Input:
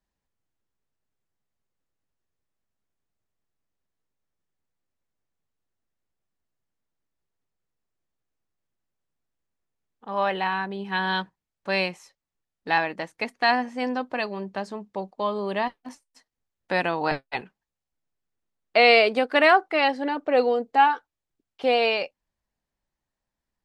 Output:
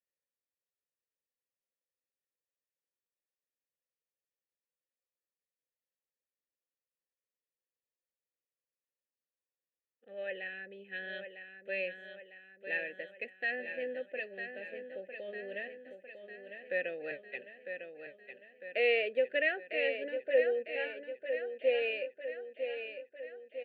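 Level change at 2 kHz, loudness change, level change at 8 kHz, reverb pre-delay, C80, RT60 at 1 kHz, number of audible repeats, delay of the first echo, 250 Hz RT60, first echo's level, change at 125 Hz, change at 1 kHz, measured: -10.0 dB, -12.5 dB, n/a, none, none, none, 6, 0.952 s, none, -8.0 dB, under -20 dB, -28.0 dB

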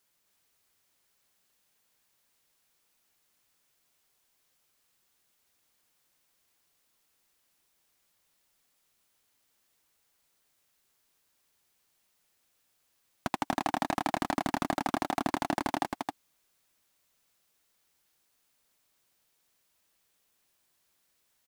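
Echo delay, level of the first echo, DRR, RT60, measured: 0.267 s, -4.0 dB, none, none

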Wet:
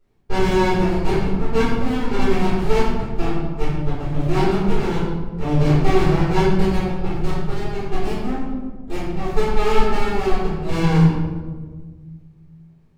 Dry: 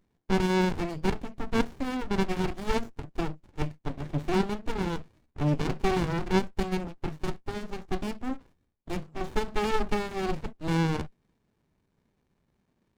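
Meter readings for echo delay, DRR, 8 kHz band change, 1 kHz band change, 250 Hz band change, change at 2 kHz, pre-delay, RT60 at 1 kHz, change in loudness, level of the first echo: none, -14.0 dB, +5.5 dB, +8.5 dB, +9.0 dB, +7.0 dB, 3 ms, 1.3 s, +9.5 dB, none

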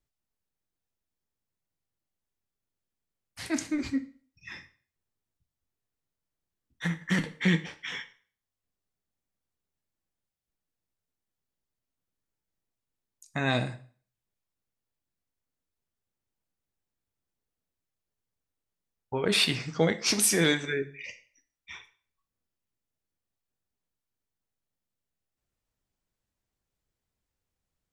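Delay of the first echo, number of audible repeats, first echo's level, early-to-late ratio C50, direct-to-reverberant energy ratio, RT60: none, none, none, 15.0 dB, 8.5 dB, 0.45 s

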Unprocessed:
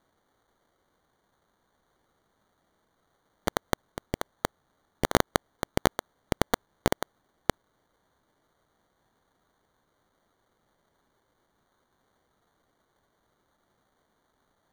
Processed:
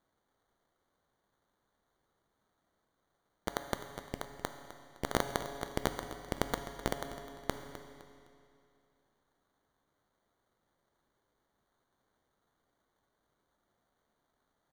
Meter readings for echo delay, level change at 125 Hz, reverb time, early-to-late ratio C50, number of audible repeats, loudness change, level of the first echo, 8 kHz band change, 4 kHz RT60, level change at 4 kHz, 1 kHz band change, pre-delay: 0.256 s, -8.0 dB, 2.5 s, 7.0 dB, 2, -7.5 dB, -14.0 dB, -7.5 dB, 2.3 s, -7.5 dB, -7.5 dB, 7 ms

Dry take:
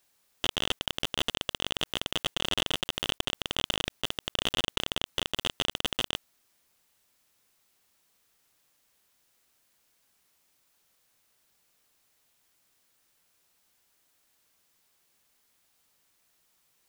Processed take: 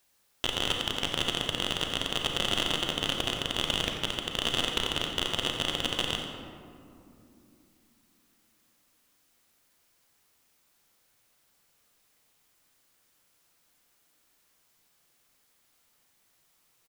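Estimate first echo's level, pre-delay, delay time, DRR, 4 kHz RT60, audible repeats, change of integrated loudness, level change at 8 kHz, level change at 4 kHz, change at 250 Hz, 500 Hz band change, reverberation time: -10.5 dB, 32 ms, 89 ms, 2.0 dB, 1.0 s, 1, +1.5 dB, +1.0 dB, +1.5 dB, +3.5 dB, +2.5 dB, 2.8 s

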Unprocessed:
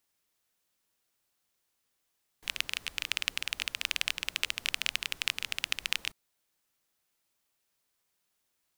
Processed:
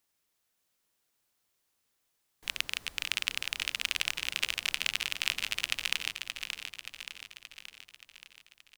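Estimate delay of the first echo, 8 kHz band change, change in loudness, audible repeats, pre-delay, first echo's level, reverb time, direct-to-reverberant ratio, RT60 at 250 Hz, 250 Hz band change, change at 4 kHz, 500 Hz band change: 0.576 s, +1.0 dB, 0.0 dB, 6, none, -7.0 dB, none, none, none, +1.0 dB, +1.0 dB, +1.0 dB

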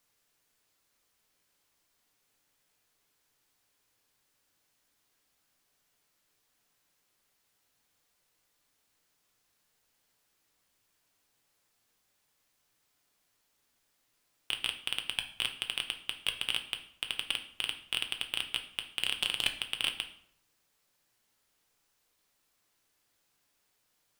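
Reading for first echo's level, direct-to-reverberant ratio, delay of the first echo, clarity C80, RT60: none, 5.0 dB, none, 14.5 dB, 0.65 s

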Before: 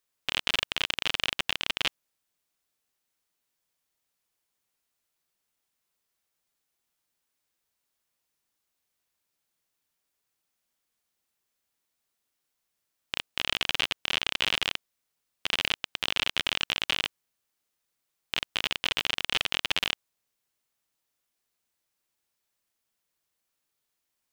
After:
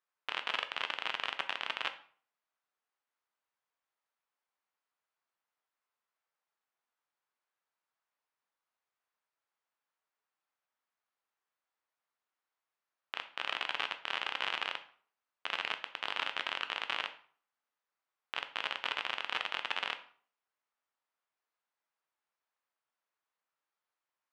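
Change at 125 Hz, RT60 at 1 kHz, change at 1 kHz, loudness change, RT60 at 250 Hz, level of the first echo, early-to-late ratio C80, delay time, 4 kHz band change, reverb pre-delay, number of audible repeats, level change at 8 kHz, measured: under -15 dB, 0.50 s, 0.0 dB, -7.5 dB, 0.45 s, none, 17.0 dB, none, -10.0 dB, 9 ms, none, -17.5 dB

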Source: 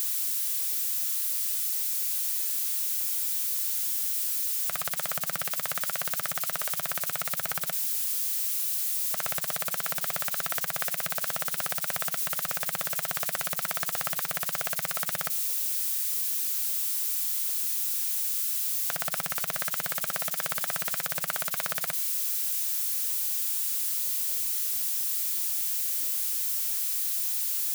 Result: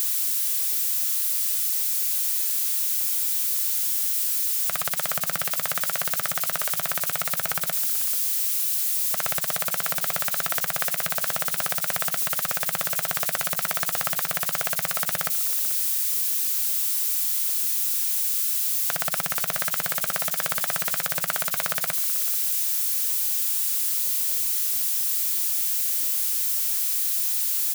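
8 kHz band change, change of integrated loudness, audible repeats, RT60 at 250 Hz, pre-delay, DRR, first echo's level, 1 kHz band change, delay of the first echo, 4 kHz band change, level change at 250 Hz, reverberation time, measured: +4.5 dB, +4.5 dB, 1, none, none, none, -17.5 dB, +4.5 dB, 0.438 s, +4.5 dB, +4.5 dB, none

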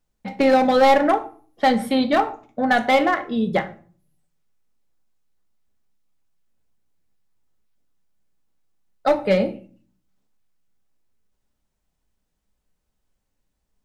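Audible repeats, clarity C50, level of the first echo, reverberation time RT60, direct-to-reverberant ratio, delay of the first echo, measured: none, 16.0 dB, none, 0.45 s, 8.0 dB, none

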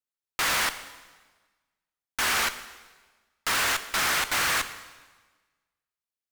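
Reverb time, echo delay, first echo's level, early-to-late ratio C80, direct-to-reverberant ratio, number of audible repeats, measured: 1.4 s, none, none, 14.5 dB, 10.5 dB, none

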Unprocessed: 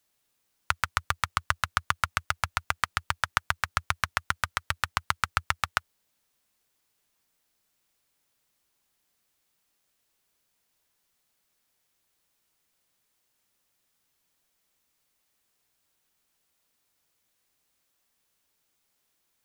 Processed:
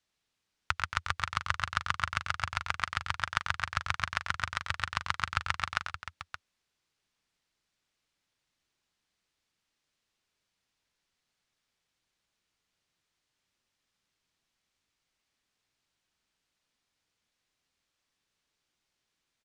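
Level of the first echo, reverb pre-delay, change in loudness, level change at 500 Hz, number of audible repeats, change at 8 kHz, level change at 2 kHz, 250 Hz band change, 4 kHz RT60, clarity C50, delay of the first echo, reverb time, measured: -8.5 dB, none, -3.5 dB, -5.5 dB, 3, -7.5 dB, -3.0 dB, -2.0 dB, none, none, 93 ms, none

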